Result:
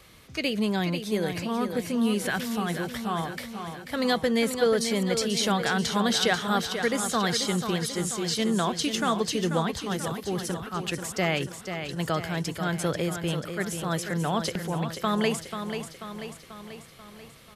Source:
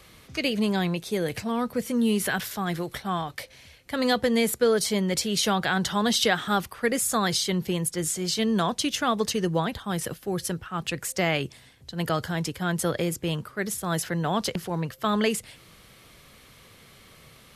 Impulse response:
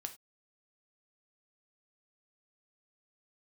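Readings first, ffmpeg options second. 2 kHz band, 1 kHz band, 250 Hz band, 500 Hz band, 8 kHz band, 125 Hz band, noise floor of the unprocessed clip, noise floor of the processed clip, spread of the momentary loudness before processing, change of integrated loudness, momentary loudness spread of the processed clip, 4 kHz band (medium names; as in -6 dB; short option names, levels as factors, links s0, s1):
-0.5 dB, -0.5 dB, -0.5 dB, -0.5 dB, -2.5 dB, -0.5 dB, -53 dBFS, -48 dBFS, 8 LU, -1.0 dB, 11 LU, -0.5 dB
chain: -filter_complex "[0:a]acrossover=split=9300[s0][s1];[s1]acompressor=threshold=0.00708:ratio=4:attack=1:release=60[s2];[s0][s2]amix=inputs=2:normalize=0,aecho=1:1:488|976|1464|1952|2440|2928|3416:0.398|0.223|0.125|0.0699|0.0392|0.0219|0.0123,volume=0.841"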